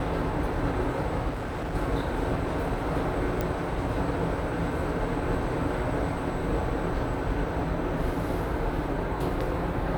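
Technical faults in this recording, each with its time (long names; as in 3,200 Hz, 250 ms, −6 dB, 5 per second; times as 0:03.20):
0:01.29–0:01.76: clipping −29 dBFS
0:03.41: click −14 dBFS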